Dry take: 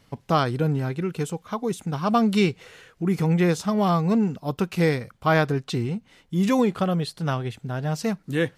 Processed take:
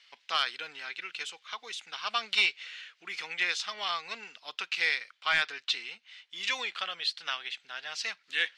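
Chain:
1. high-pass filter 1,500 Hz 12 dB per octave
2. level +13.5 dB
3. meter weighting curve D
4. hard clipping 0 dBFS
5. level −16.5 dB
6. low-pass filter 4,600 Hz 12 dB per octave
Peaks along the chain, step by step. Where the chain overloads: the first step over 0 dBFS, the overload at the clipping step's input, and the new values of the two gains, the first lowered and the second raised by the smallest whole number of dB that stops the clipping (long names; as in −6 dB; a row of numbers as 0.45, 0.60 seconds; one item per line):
−12.5, +1.0, +9.0, 0.0, −16.5, −15.5 dBFS
step 2, 9.0 dB
step 2 +4.5 dB, step 5 −7.5 dB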